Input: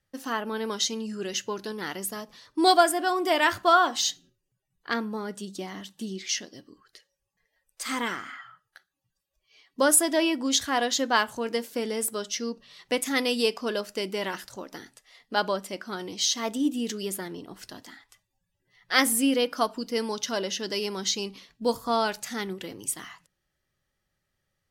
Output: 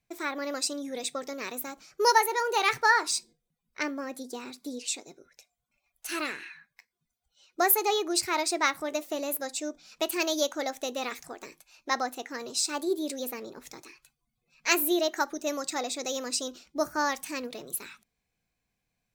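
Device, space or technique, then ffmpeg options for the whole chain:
nightcore: -af "asetrate=56889,aresample=44100,volume=0.75"

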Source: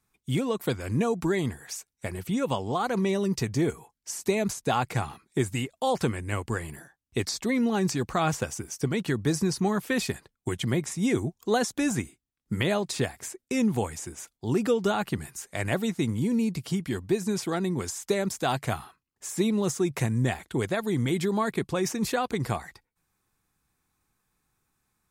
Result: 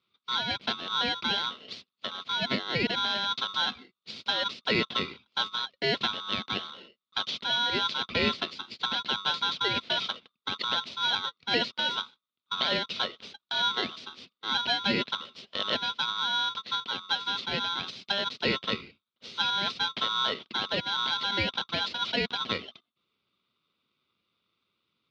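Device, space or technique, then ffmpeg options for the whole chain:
ring modulator pedal into a guitar cabinet: -af "aeval=exprs='val(0)*sgn(sin(2*PI*1200*n/s))':c=same,highpass=100,equalizer=f=300:t=q:w=4:g=-8,equalizer=f=790:t=q:w=4:g=-6,equalizer=f=1700:t=q:w=4:g=-8,lowpass=f=4100:w=0.5412,lowpass=f=4100:w=1.3066,equalizer=f=250:t=o:w=1:g=11,equalizer=f=1000:t=o:w=1:g=-7,equalizer=f=4000:t=o:w=1:g=9,equalizer=f=8000:t=o:w=1:g=-10"

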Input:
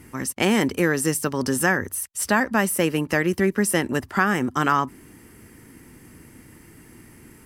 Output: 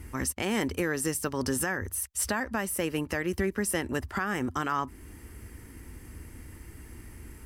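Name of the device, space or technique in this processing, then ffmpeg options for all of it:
car stereo with a boomy subwoofer: -af "lowshelf=f=100:t=q:w=1.5:g=11.5,alimiter=limit=0.168:level=0:latency=1:release=423,volume=0.794"

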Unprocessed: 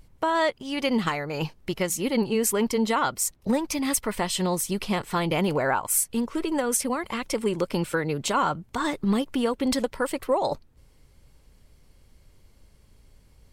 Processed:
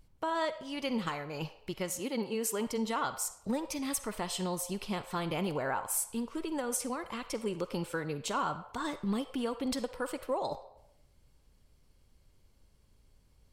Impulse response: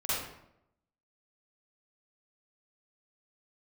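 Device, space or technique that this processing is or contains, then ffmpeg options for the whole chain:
filtered reverb send: -filter_complex "[0:a]asettb=1/sr,asplit=3[s0][s1][s2];[s0]atrim=end=1.994[s3];[s1]atrim=start=1.99:end=2.67,asetpts=PTS-STARTPTS,afade=t=in:d=0.004:c=qsin,afade=t=out:st=0.676:d=0.004:c=qsin,highpass=190[s4];[s2]atrim=start=2.666[s5];[s3][s4]acrossfade=d=0.004:c1=hsin:c2=qsin[s6];[s6][s5]acrossfade=d=0.004:c1=qsin:c2=hsin,equalizer=f=2000:w=3.2:g=-3.5,asplit=2[s7][s8];[s8]highpass=f=490:w=0.5412,highpass=f=490:w=1.3066,lowpass=8900[s9];[1:a]atrim=start_sample=2205[s10];[s9][s10]afir=irnorm=-1:irlink=0,volume=0.133[s11];[s7][s11]amix=inputs=2:normalize=0,volume=0.355"

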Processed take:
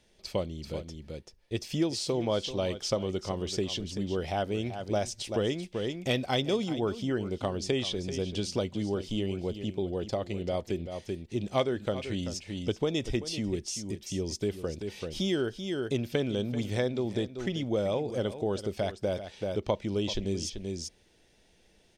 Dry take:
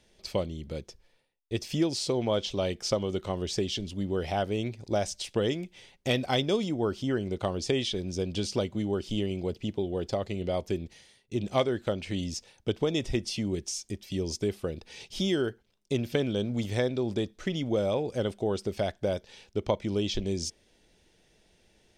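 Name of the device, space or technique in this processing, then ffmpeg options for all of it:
ducked delay: -filter_complex "[0:a]asplit=3[s0][s1][s2];[s1]adelay=386,volume=0.708[s3];[s2]apad=whole_len=986286[s4];[s3][s4]sidechaincompress=threshold=0.0112:ratio=4:attack=12:release=266[s5];[s0][s5]amix=inputs=2:normalize=0,volume=0.841"

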